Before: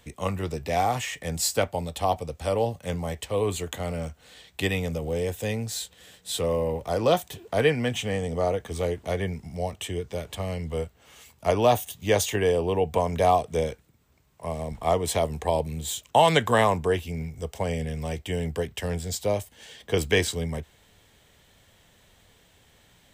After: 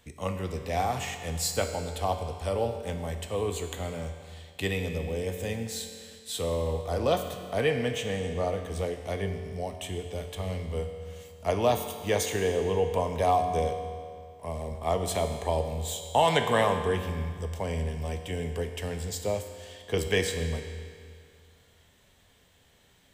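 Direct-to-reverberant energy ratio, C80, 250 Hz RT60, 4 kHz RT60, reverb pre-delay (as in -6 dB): 5.5 dB, 8.0 dB, 2.2 s, 2.0 s, 5 ms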